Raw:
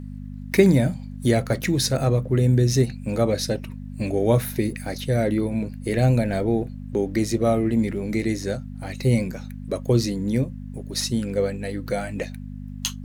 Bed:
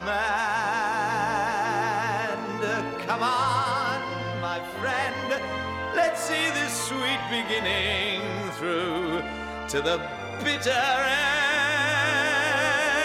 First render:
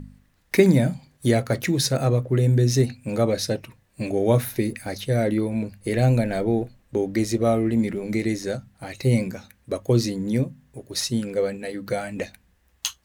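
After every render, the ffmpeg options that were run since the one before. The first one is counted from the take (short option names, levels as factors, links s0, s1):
-af "bandreject=f=50:t=h:w=4,bandreject=f=100:t=h:w=4,bandreject=f=150:t=h:w=4,bandreject=f=200:t=h:w=4,bandreject=f=250:t=h:w=4"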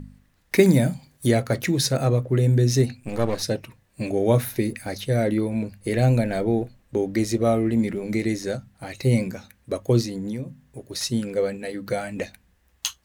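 -filter_complex "[0:a]asettb=1/sr,asplit=3[s0][s1][s2];[s0]atrim=end=0.594[s3];[s1]atrim=start=0.59:end=1.27,asetpts=PTS-STARTPTS,afade=t=in:d=0.004:c=qsin,afade=t=out:st=0.676:d=0.004:c=qsin,highshelf=f=7500:g=8.5[s4];[s2]atrim=start=1.266[s5];[s3][s4]acrossfade=d=0.004:c1=hsin:c2=qsin[s6];[s6][s5]acrossfade=d=0.004:c1=qsin:c2=hsin,asplit=3[s7][s8][s9];[s7]afade=t=out:st=3:d=0.02[s10];[s8]aeval=exprs='if(lt(val(0),0),0.251*val(0),val(0))':c=same,afade=t=in:st=3:d=0.02,afade=t=out:st=3.41:d=0.02[s11];[s9]afade=t=in:st=3.41:d=0.02[s12];[s10][s11][s12]amix=inputs=3:normalize=0,asettb=1/sr,asplit=3[s13][s14][s15];[s13]atrim=end=10.014[s16];[s14]atrim=start=10.01:end=11.01,asetpts=PTS-STARTPTS,afade=t=in:d=0.004:c=qsin,afade=t=out:st=0.996:d=0.004:c=qsin,acompressor=threshold=0.0501:ratio=6:attack=3.2:release=140:knee=1:detection=peak[s17];[s15]atrim=start=11.006[s18];[s16][s17]acrossfade=d=0.004:c1=hsin:c2=qsin[s19];[s19][s18]acrossfade=d=0.004:c1=qsin:c2=hsin"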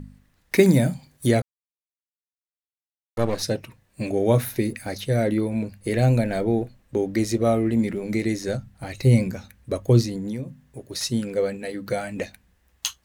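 -filter_complex "[0:a]asettb=1/sr,asplit=3[s0][s1][s2];[s0]atrim=end=8.484[s3];[s1]atrim=start=8.48:end=10.17,asetpts=PTS-STARTPTS,afade=t=in:d=0.004:c=qsin,afade=t=out:st=1.686:d=0.004:c=qsin,lowshelf=f=97:g=11[s4];[s2]atrim=start=10.166[s5];[s3][s4]acrossfade=d=0.004:c1=hsin:c2=qsin[s6];[s6][s5]acrossfade=d=0.004:c1=qsin:c2=hsin,asplit=3[s7][s8][s9];[s7]atrim=end=1.42,asetpts=PTS-STARTPTS,afade=t=out:st=1.416:d=0.004:c=hsin[s10];[s8]atrim=start=1.42:end=3.17,asetpts=PTS-STARTPTS,volume=0[s11];[s9]atrim=start=3.17,asetpts=PTS-STARTPTS,afade=t=in:d=0.004:c=hsin[s12];[s10][s11][s12]concat=n=3:v=0:a=1"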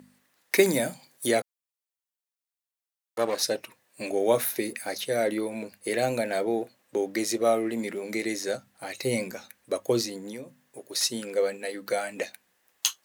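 -af "highpass=410,highshelf=f=6300:g=5"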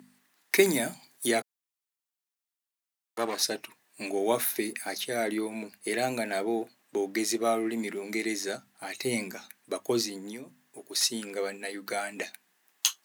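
-af "highpass=170,equalizer=f=530:w=5.1:g=-12.5"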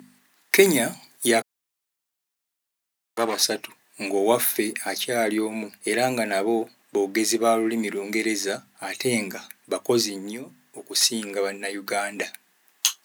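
-af "volume=2.11,alimiter=limit=0.891:level=0:latency=1"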